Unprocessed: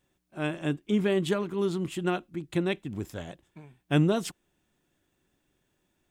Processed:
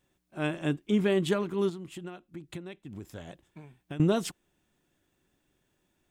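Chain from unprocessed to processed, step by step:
0:01.69–0:04.00: downward compressor 10 to 1, threshold −38 dBFS, peak gain reduction 19.5 dB

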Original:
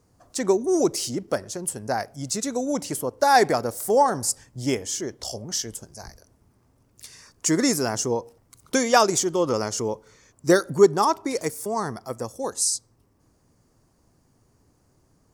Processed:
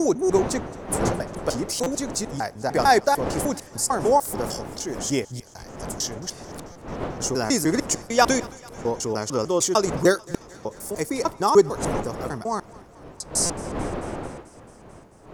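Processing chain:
slices reordered back to front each 150 ms, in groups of 6
wind on the microphone 600 Hz −34 dBFS
on a send: feedback echo with a high-pass in the loop 220 ms, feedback 71%, high-pass 590 Hz, level −22 dB
on the sum: buffer that repeats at 0:01.83/0:06.72/0:10.31/0:13.46, samples 256, times 5

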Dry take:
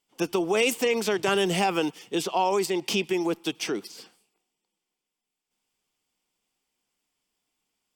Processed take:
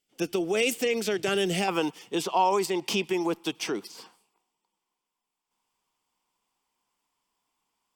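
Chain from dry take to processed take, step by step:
parametric band 990 Hz −12 dB 0.53 octaves, from 0:01.68 +5 dB, from 0:03.95 +14 dB
level −1.5 dB

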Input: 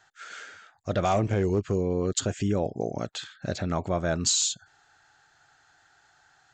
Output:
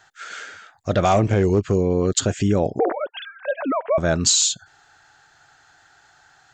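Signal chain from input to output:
0:02.79–0:03.98: three sine waves on the formant tracks
level +7 dB

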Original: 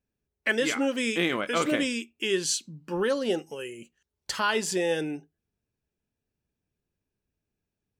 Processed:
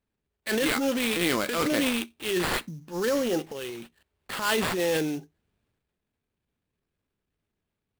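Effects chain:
transient designer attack −10 dB, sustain +6 dB
sample-rate reduction 6,100 Hz, jitter 20%
level +1.5 dB

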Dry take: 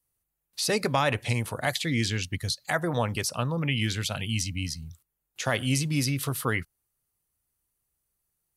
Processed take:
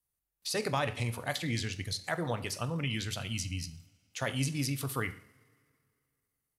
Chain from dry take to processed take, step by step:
coupled-rooms reverb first 0.69 s, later 3.1 s, from −21 dB, DRR 8.5 dB
tempo change 1.3×
level −6.5 dB

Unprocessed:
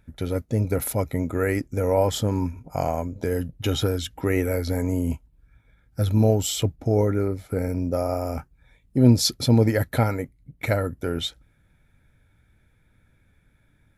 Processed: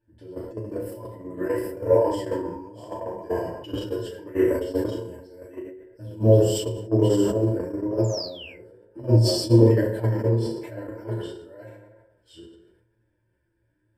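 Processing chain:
delay that plays each chunk backwards 620 ms, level −3.5 dB
parametric band 410 Hz +11.5 dB 1 octave
feedback delay network reverb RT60 0.94 s, low-frequency decay 0.7×, high-frequency decay 0.6×, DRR −10 dB
sound drawn into the spectrogram fall, 0:08.04–0:08.57, 2,000–7,400 Hz −13 dBFS
downward compressor 2 to 1, threshold −20 dBFS, peak gain reduction 14.5 dB
noise gate −11 dBFS, range −22 dB
mains-hum notches 50/100/150/200 Hz
flanger 1 Hz, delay 8.7 ms, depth 3.6 ms, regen +35%
EQ curve with evenly spaced ripples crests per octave 1.3, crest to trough 15 dB
on a send: flutter between parallel walls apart 6 metres, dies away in 0.21 s
on the sum: level that may fall only so fast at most 56 dB per second

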